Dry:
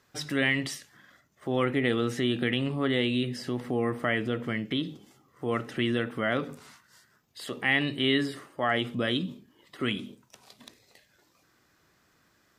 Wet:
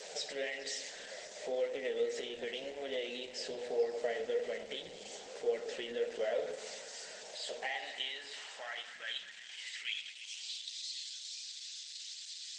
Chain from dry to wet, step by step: jump at every zero crossing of -34 dBFS; compression 20:1, threshold -26 dBFS, peak gain reduction 8 dB; flange 1.8 Hz, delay 9 ms, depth 5.2 ms, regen +37%; static phaser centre 310 Hz, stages 6; repeats whose band climbs or falls 107 ms, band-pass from 920 Hz, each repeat 0.7 oct, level -6 dB; simulated room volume 1800 m³, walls mixed, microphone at 0.56 m; high-pass sweep 490 Hz -> 3.8 kHz, 7.07–10.85 s; treble shelf 2.8 kHz +3.5 dB; FFT band-pass 160–8200 Hz; trim -2 dB; Opus 16 kbps 48 kHz

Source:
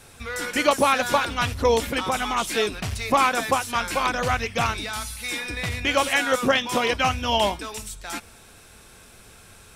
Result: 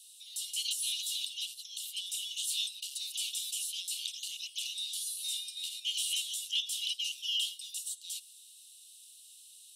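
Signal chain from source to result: 1.40–1.98 s: compression 4:1, threshold -22 dBFS, peak gain reduction 7 dB; rippled Chebyshev high-pass 2.8 kHz, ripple 6 dB

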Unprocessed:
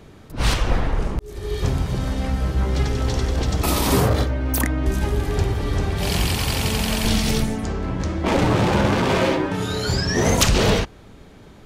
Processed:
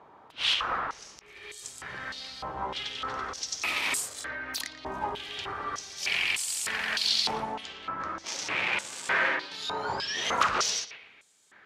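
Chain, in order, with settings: bucket-brigade echo 115 ms, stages 4096, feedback 33%, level -15 dB; step-sequenced band-pass 3.3 Hz 940–7900 Hz; trim +6.5 dB

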